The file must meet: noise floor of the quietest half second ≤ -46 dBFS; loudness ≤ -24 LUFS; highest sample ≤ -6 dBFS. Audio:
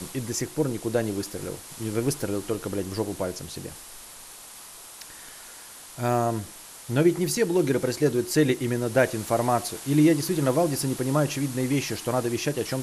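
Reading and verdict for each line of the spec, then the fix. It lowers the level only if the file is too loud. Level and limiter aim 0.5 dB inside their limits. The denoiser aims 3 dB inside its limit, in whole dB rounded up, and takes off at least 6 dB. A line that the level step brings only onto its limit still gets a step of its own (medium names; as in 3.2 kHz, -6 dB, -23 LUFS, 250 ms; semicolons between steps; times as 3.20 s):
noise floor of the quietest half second -44 dBFS: fail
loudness -25.5 LUFS: pass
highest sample -8.5 dBFS: pass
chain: noise reduction 6 dB, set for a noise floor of -44 dBFS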